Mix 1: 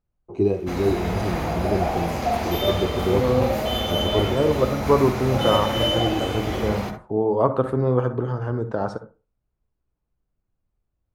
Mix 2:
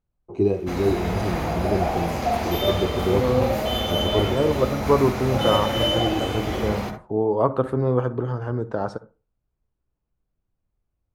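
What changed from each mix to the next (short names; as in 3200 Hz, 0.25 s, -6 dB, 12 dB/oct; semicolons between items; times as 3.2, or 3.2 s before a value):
second voice: send -6.0 dB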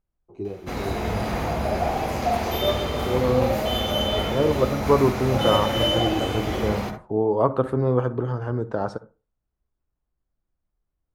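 first voice -11.5 dB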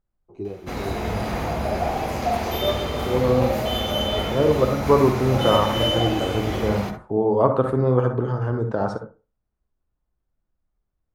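second voice: send +11.5 dB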